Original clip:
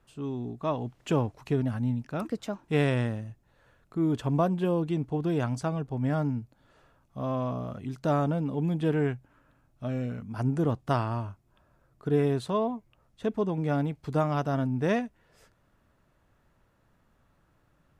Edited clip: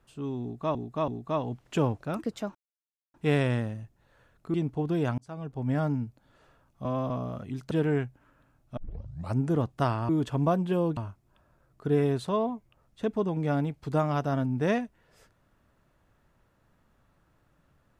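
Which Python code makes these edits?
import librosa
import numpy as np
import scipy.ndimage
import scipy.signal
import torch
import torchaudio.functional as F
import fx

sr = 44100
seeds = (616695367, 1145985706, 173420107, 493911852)

y = fx.edit(x, sr, fx.repeat(start_s=0.42, length_s=0.33, count=3),
    fx.cut(start_s=1.37, length_s=0.72),
    fx.insert_silence(at_s=2.61, length_s=0.59),
    fx.move(start_s=4.01, length_s=0.88, to_s=11.18),
    fx.fade_in_span(start_s=5.53, length_s=0.49),
    fx.reverse_span(start_s=7.2, length_s=0.25),
    fx.cut(start_s=8.06, length_s=0.74),
    fx.tape_start(start_s=9.86, length_s=0.59), tone=tone)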